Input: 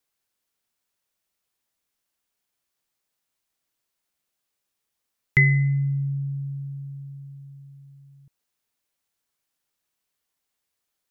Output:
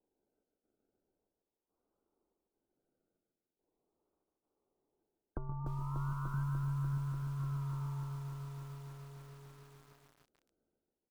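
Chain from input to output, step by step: Wiener smoothing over 15 samples; comb 2.4 ms, depth 46%; decimation with a swept rate 33×, swing 60% 0.41 Hz; bell 100 Hz -5 dB 1.6 oct; step gate "xx.xxx..x" 71 bpm -12 dB; bell 340 Hz +8.5 dB 1.6 oct; on a send: feedback echo 0.149 s, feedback 53%, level -3.5 dB; on the sum: compressor 16:1, threshold -38 dBFS, peak gain reduction 20 dB; brick-wall FIR low-pass 1600 Hz; lo-fi delay 0.295 s, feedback 80%, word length 10-bit, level -5 dB; gain +1 dB

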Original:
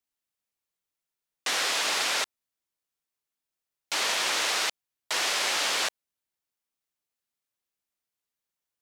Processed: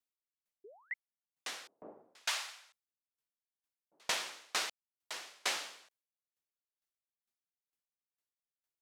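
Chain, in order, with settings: 0.64–0.94 painted sound rise 370–2200 Hz -32 dBFS; 1.67–4 bands offset in time lows, highs 0.48 s, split 620 Hz; dB-ramp tremolo decaying 2.2 Hz, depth 39 dB; gain -2.5 dB

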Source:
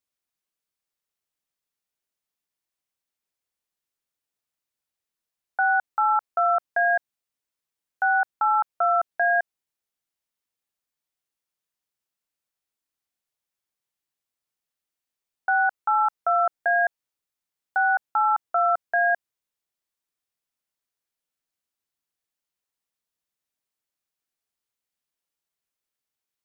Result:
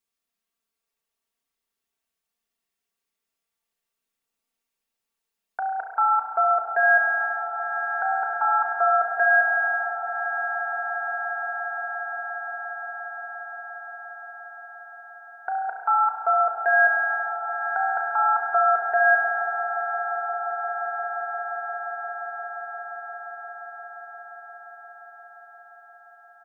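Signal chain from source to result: comb 4.4 ms, depth 94%; limiter -12 dBFS, peak gain reduction 3 dB; resonator 390 Hz, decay 0.18 s, harmonics odd, mix 60%; swelling echo 0.175 s, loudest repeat 8, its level -17 dB; spring tank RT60 2.8 s, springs 32 ms, chirp 40 ms, DRR 1 dB; gain +6 dB

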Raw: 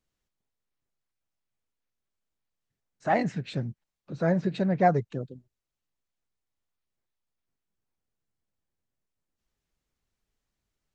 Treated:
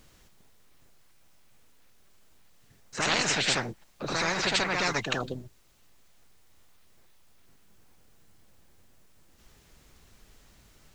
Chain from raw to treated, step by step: reverse echo 76 ms -8.5 dB; spectral compressor 10:1

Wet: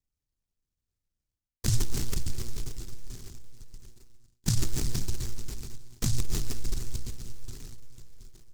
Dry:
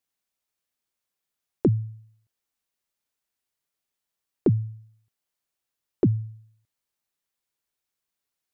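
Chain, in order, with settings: low shelf 84 Hz -3 dB; comb 2 ms, depth 54%; feedback echo 0.16 s, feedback 53%, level -14.5 dB; on a send at -11 dB: reverb RT60 4.6 s, pre-delay 60 ms; on the sum: low-pass opened by the level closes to 1300 Hz, open at -25.5 dBFS; monotone LPC vocoder at 8 kHz 120 Hz; overloaded stage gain 5 dB; reverse; compressor 8:1, threshold -34 dBFS, peak gain reduction 23.5 dB; reverse; tilt -3.5 dB/oct; notches 60/120/180/240/300/360 Hz; noise-modulated delay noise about 5900 Hz, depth 0.45 ms

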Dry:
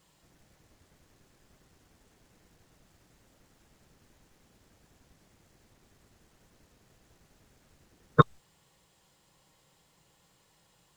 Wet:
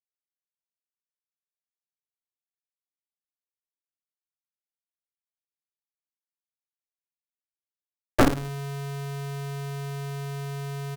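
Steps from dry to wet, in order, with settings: level-crossing sampler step -31.5 dBFS; LPF 1800 Hz 24 dB/oct; in parallel at -11.5 dB: sine folder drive 6 dB, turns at -2.5 dBFS; on the sum: Butterworth band-stop 1100 Hz, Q 2.8; doubler 34 ms -13 dB; reverb RT60 0.35 s, pre-delay 4 ms, DRR -1.5 dB; polarity switched at an audio rate 140 Hz; gain -3.5 dB

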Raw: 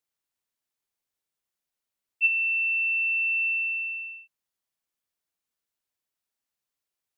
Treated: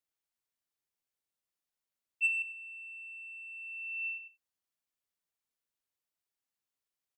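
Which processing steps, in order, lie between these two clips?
soft clip -15 dBFS, distortion -26 dB; 2.42–4.18 negative-ratio compressor -37 dBFS, ratio -1; outdoor echo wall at 17 m, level -9 dB; gain -5.5 dB

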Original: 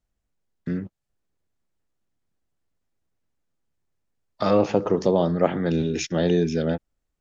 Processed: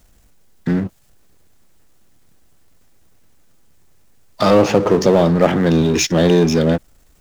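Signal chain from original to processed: high shelf 6400 Hz +6.5 dB; power-law curve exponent 0.7; gain +4.5 dB

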